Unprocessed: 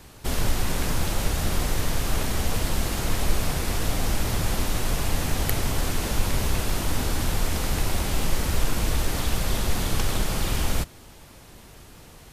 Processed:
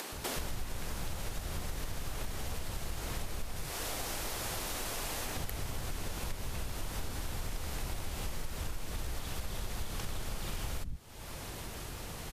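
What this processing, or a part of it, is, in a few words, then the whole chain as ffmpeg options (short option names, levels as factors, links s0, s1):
upward and downward compression: -filter_complex "[0:a]asettb=1/sr,asplit=3[s0][s1][s2];[s0]atrim=end=3.564[s3];[s1]atrim=start=3.56:end=5.25,asetpts=PTS-STARTPTS,afade=t=in:d=0.004:c=qsin,afade=t=out:st=1.686:d=0.004:c=qsin,bass=f=250:g=-10,treble=f=4000:g=2[s4];[s2]atrim=start=5.246[s5];[s3][s4]acrossfade=d=0.004:c1=hsin:c2=qsin[s6];[s6][s5]acrossfade=d=0.004:c1=qsin:c2=hsin,acrossover=split=250[s7][s8];[s7]adelay=120[s9];[s9][s8]amix=inputs=2:normalize=0,acompressor=mode=upward:threshold=0.0141:ratio=2.5,acompressor=threshold=0.0158:ratio=6,volume=1.19"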